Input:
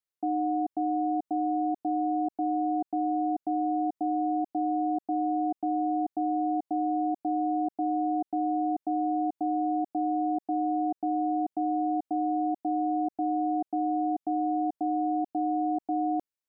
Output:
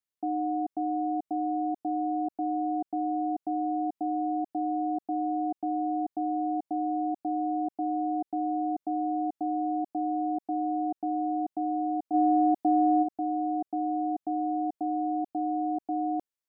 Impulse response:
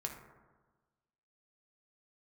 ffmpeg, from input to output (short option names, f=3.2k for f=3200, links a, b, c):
-filter_complex "[0:a]asplit=3[a][b][c];[a]afade=t=out:st=12.13:d=0.02[d];[b]acontrast=72,afade=t=in:st=12.13:d=0.02,afade=t=out:st=13.02:d=0.02[e];[c]afade=t=in:st=13.02:d=0.02[f];[d][e][f]amix=inputs=3:normalize=0,volume=-1.5dB"